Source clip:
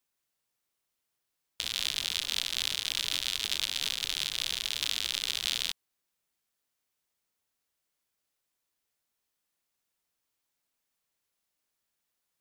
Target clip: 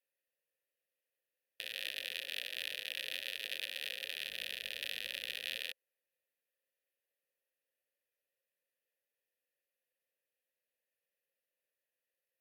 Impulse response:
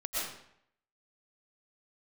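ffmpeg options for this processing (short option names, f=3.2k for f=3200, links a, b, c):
-filter_complex "[0:a]asettb=1/sr,asplit=3[a][b][c];[a]atrim=end=4.274[d];[b]atrim=start=4.27:end=5.57,asetpts=PTS-STARTPTS,afade=t=in:d=0.004:c=qsin,afade=t=out:st=1.296:d=0.004:c=qsin,aeval=exprs='val(0)+0.00398*(sin(2*PI*50*n/s)+sin(2*PI*2*50*n/s)/2+sin(2*PI*3*50*n/s)/3+sin(2*PI*4*50*n/s)/4+sin(2*PI*5*50*n/s)/5)':c=same[e];[c]atrim=start=5.566[f];[d][e]acrossfade=d=0.004:c1=hsin:c2=qsin[g];[g][f]acrossfade=d=0.004:c1=qsin:c2=hsin,asplit=3[h][i][j];[h]bandpass=f=530:t=q:w=8,volume=0dB[k];[i]bandpass=f=1.84k:t=q:w=8,volume=-6dB[l];[j]bandpass=f=2.48k:t=q:w=8,volume=-9dB[m];[k][l][m]amix=inputs=3:normalize=0,aexciter=amount=9.1:drive=7.5:freq=10k,volume=7dB"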